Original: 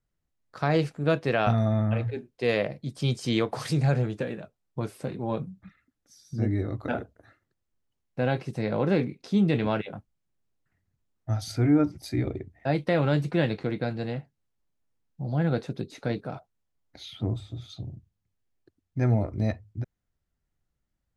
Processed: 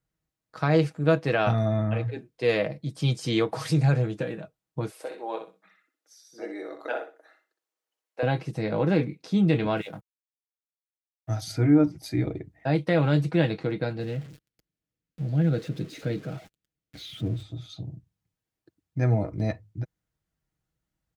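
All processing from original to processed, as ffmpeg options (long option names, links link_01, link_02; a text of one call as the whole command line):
ffmpeg -i in.wav -filter_complex "[0:a]asettb=1/sr,asplit=3[link_01][link_02][link_03];[link_01]atrim=end=4.914[link_04];[link_02]atrim=start=4.91:end=8.23,asetpts=PTS-STARTPTS,afade=type=in:duration=0.004:curve=qsin,afade=type=out:start_time=3.316:duration=0.004:curve=qsin,highpass=frequency=410:width=0.5412,highpass=frequency=410:width=1.3066,aecho=1:1:62|124|186:0.398|0.0955|0.0229,atrim=end_sample=146412[link_05];[link_03]atrim=start=8.226[link_06];[link_04][link_05]acrossfade=duration=0.004:curve1=hsin:curve2=qsin[link_07];[link_07][link_06]acrossfade=duration=0.004:curve1=qsin:curve2=hsin,asettb=1/sr,asplit=3[link_08][link_09][link_10];[link_08]atrim=end=9.774[link_11];[link_09]atrim=start=9.77:end=11.41,asetpts=PTS-STARTPTS,afade=type=in:duration=0.004:curve=qsin,afade=type=out:start_time=1.636:duration=0.004:curve=qsin,aemphasis=mode=production:type=50fm,aeval=exprs='sgn(val(0))*max(abs(val(0))-0.00224,0)':channel_layout=same[link_12];[link_10]atrim=start=11.406[link_13];[link_11][link_12]acrossfade=duration=0.004:curve1=hsin:curve2=qsin[link_14];[link_14][link_13]acrossfade=duration=0.004:curve1=qsin:curve2=hsin,asettb=1/sr,asplit=3[link_15][link_16][link_17];[link_15]atrim=end=14.004[link_18];[link_16]atrim=start=14:end=17.43,asetpts=PTS-STARTPTS,afade=type=in:duration=0.004:curve=qsin,afade=type=out:start_time=3.426:duration=0.004:curve=qsin,aeval=exprs='val(0)+0.5*0.0112*sgn(val(0))':channel_layout=same,lowpass=frequency=3500:poles=1,equalizer=frequency=910:width_type=o:width=1.1:gain=-12.5[link_19];[link_17]atrim=start=17.426[link_20];[link_18][link_19]acrossfade=duration=0.004:curve1=hsin:curve2=qsin[link_21];[link_21][link_20]acrossfade=duration=0.004:curve1=qsin:curve2=hsin,highpass=47,aecho=1:1:6.3:0.44" out.wav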